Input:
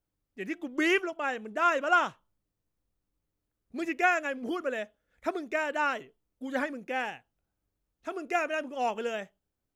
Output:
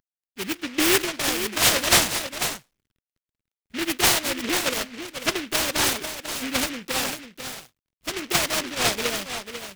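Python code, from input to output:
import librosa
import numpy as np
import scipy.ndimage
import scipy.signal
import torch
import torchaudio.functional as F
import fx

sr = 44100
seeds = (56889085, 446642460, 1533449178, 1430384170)

p1 = fx.cvsd(x, sr, bps=64000)
p2 = p1 + fx.echo_single(p1, sr, ms=494, db=-9.0, dry=0)
p3 = fx.noise_mod_delay(p2, sr, seeds[0], noise_hz=2200.0, depth_ms=0.33)
y = F.gain(torch.from_numpy(p3), 6.0).numpy()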